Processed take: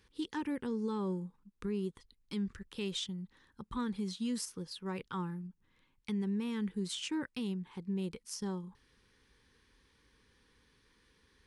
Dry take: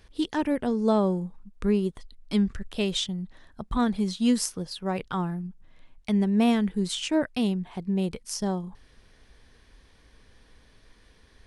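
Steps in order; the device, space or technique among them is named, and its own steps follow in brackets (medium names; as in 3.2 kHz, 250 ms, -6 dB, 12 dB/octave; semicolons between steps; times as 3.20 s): PA system with an anti-feedback notch (high-pass 100 Hz 6 dB/octave; Butterworth band-stop 660 Hz, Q 2.2; peak limiter -20.5 dBFS, peak gain reduction 11 dB); trim -8 dB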